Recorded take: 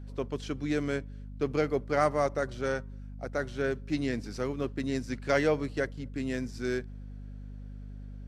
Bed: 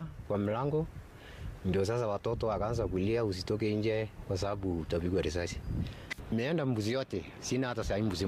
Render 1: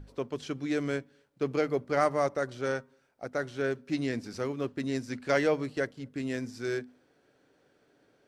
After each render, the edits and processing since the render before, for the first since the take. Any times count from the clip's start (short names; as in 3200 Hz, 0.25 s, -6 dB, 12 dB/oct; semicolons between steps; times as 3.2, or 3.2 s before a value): notches 50/100/150/200/250 Hz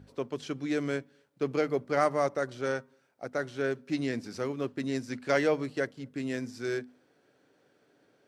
HPF 98 Hz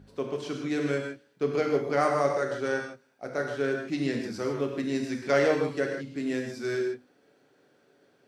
non-linear reverb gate 0.18 s flat, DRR 1 dB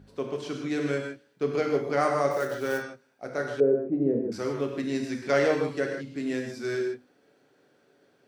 2.31–2.84 block floating point 5-bit; 3.6–4.32 synth low-pass 490 Hz, resonance Q 2.9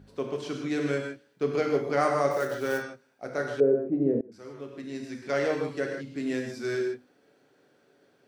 4.21–6.28 fade in, from -20 dB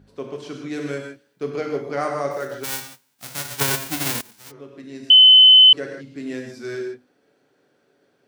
0.73–1.5 high shelf 8000 Hz +7.5 dB; 2.63–4.5 spectral whitening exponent 0.1; 5.1–5.73 bleep 3040 Hz -6 dBFS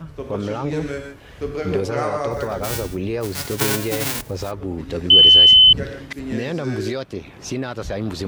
add bed +6 dB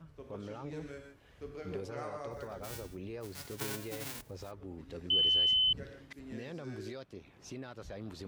gain -18.5 dB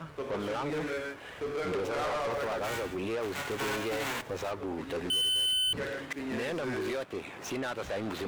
median filter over 9 samples; overdrive pedal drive 28 dB, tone 7800 Hz, clips at -24.5 dBFS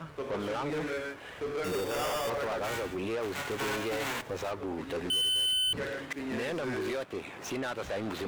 1.64–2.3 sample-rate reducer 4100 Hz